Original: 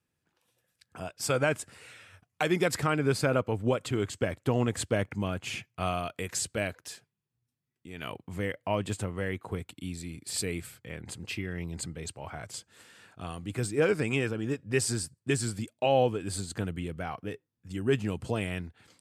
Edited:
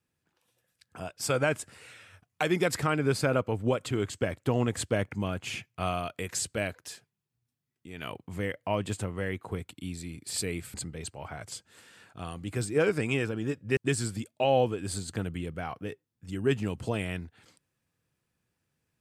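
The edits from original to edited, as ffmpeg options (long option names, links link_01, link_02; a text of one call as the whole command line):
ffmpeg -i in.wav -filter_complex "[0:a]asplit=3[link_01][link_02][link_03];[link_01]atrim=end=10.742[link_04];[link_02]atrim=start=11.758:end=14.792[link_05];[link_03]atrim=start=15.188[link_06];[link_04][link_05]acrossfade=duration=0.004:curve1=hsin:curve2=hsin[link_07];[link_07][link_06]acrossfade=duration=0.004:curve1=hsin:curve2=hsin" out.wav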